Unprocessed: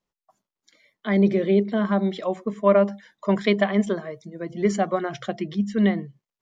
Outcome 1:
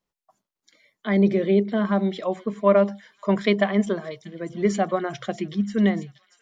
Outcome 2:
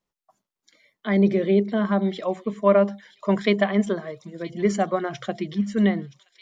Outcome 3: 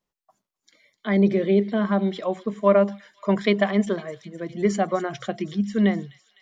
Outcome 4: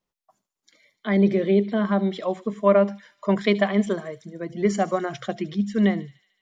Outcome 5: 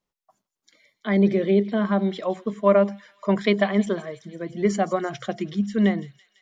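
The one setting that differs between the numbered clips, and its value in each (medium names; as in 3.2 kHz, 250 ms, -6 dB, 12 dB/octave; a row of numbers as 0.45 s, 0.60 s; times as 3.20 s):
feedback echo behind a high-pass, time: 635 ms, 971 ms, 254 ms, 74 ms, 167 ms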